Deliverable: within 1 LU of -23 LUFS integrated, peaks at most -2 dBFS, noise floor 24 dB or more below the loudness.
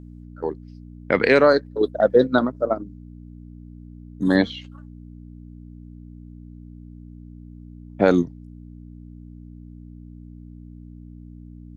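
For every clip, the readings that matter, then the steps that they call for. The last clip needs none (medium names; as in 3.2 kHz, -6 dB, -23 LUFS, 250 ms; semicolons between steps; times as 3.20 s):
hum 60 Hz; highest harmonic 300 Hz; hum level -39 dBFS; loudness -20.5 LUFS; peak level -2.5 dBFS; loudness target -23.0 LUFS
-> de-hum 60 Hz, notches 5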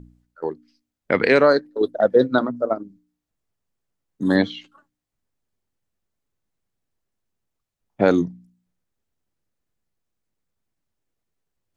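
hum not found; loudness -20.5 LUFS; peak level -2.5 dBFS; loudness target -23.0 LUFS
-> trim -2.5 dB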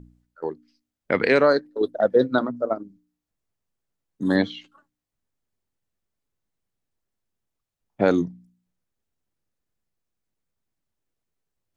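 loudness -23.0 LUFS; peak level -5.0 dBFS; noise floor -85 dBFS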